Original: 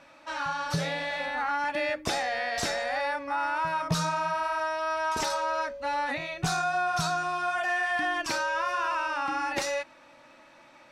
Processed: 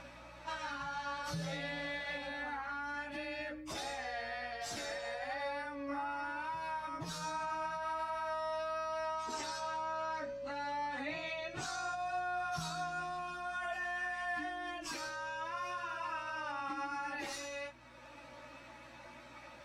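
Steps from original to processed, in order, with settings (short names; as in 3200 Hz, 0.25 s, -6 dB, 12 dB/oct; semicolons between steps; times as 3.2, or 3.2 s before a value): spectral gain 5.03–6.64, 200–8900 Hz +9 dB; dynamic EQ 290 Hz, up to +5 dB, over -53 dBFS, Q 7.5; compressor 2:1, threshold -43 dBFS, peak gain reduction 14 dB; limiter -33 dBFS, peak gain reduction 10 dB; buzz 60 Hz, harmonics 4, -63 dBFS -4 dB/oct; plain phase-vocoder stretch 1.8×; gain +3.5 dB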